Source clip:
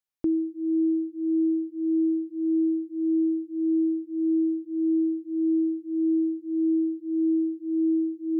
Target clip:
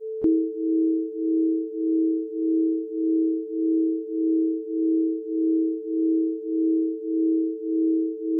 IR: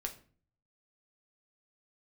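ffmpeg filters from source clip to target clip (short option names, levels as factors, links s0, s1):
-filter_complex "[0:a]asplit=2[s0][s1];[s1]asetrate=55563,aresample=44100,atempo=0.793701,volume=0.158[s2];[s0][s2]amix=inputs=2:normalize=0,aeval=exprs='val(0)+0.0251*sin(2*PI*440*n/s)':c=same,adynamicequalizer=threshold=0.02:dfrequency=410:dqfactor=0.85:tfrequency=410:tqfactor=0.85:attack=5:release=100:ratio=0.375:range=3:mode=cutabove:tftype=bell,volume=1.78"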